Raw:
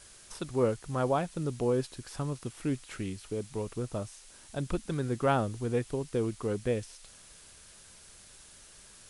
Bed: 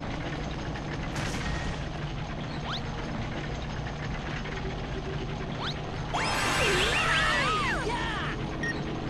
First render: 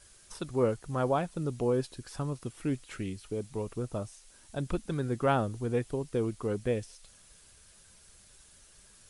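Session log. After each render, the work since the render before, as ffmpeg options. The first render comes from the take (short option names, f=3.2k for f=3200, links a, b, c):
-af "afftdn=nr=6:nf=-54"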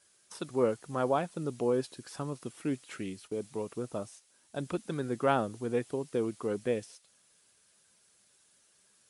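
-af "highpass=180,agate=range=-8dB:threshold=-51dB:ratio=16:detection=peak"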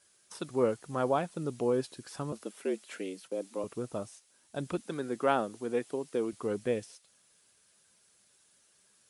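-filter_complex "[0:a]asettb=1/sr,asplit=3[a][b][c];[a]atrim=end=2.324[d];[b]atrim=start=2.32:end=3.64,asetpts=PTS-STARTPTS,afade=t=in:d=0.004:c=qsin,afade=t=out:st=1.316:d=0.004:c=qsin,afreqshift=89[e];[c]atrim=start=3.636[f];[d][e]acrossfade=d=0.004:c1=hsin:c2=qsin[g];[g][f]acrossfade=d=0.004:c1=qsin:c2=hsin,asettb=1/sr,asplit=3[h][i][j];[h]atrim=end=4.804[k];[i]atrim=start=4.8:end=6.33,asetpts=PTS-STARTPTS,afade=t=in:d=0.004:c=qsin,afade=t=out:st=1.526:d=0.004:c=qsin,highpass=210[l];[j]atrim=start=6.326[m];[k][l]acrossfade=d=0.004:c1=hsin:c2=qsin[n];[n][m]acrossfade=d=0.004:c1=qsin:c2=hsin"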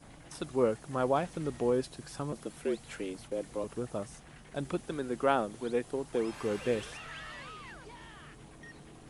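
-filter_complex "[1:a]volume=-19.5dB[a];[0:a][a]amix=inputs=2:normalize=0"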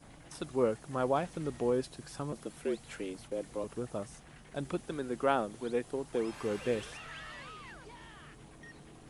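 -af "volume=-1.5dB"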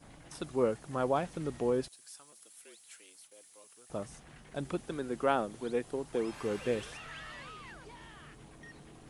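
-filter_complex "[0:a]asettb=1/sr,asplit=3[a][b][c];[a]atrim=end=1.884[d];[b]atrim=start=1.88:end=3.9,asetpts=PTS-STARTPTS,afade=t=in:d=0.004:c=qsin,afade=t=out:st=2.016:d=0.004:c=qsin,aderivative[e];[c]atrim=start=3.896[f];[d][e]acrossfade=d=0.004:c1=hsin:c2=qsin[g];[g][f]acrossfade=d=0.004:c1=qsin:c2=hsin"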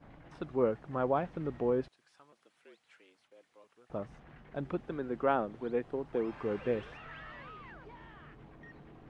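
-af "lowpass=2.1k"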